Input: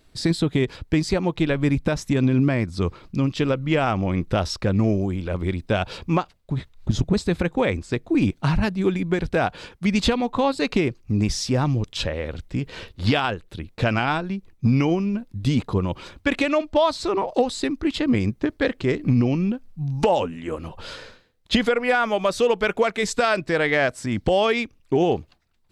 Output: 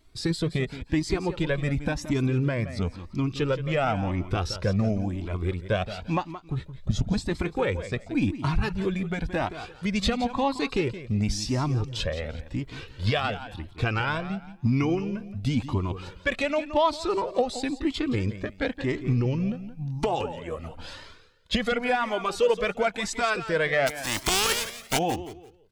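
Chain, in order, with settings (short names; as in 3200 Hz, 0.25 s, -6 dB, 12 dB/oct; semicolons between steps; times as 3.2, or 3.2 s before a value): 23.86–24.97 spectral contrast lowered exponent 0.27; feedback echo 0.172 s, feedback 25%, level -12.5 dB; cascading flanger rising 0.95 Hz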